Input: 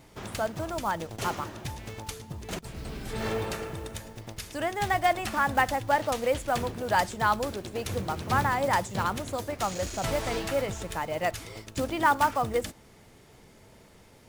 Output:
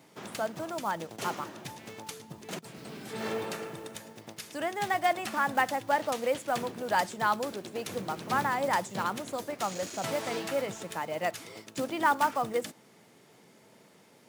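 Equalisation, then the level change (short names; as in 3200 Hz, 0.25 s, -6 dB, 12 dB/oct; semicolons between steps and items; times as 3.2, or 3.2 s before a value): HPF 150 Hz 24 dB/oct; -2.5 dB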